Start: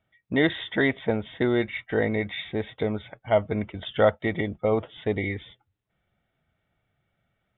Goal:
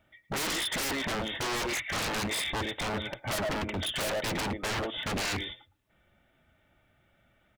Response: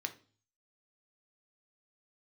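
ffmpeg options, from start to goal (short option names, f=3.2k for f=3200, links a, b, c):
-filter_complex "[0:a]aecho=1:1:3.4:0.38,asplit=2[a][b];[b]adelay=110,highpass=300,lowpass=3.4k,asoftclip=type=hard:threshold=-16dB,volume=-16dB[c];[a][c]amix=inputs=2:normalize=0,asoftclip=type=tanh:threshold=-19dB,acontrast=72,asplit=2[d][e];[1:a]atrim=start_sample=2205,atrim=end_sample=3087[f];[e][f]afir=irnorm=-1:irlink=0,volume=-12.5dB[g];[d][g]amix=inputs=2:normalize=0,aeval=exprs='0.0473*(abs(mod(val(0)/0.0473+3,4)-2)-1)':c=same"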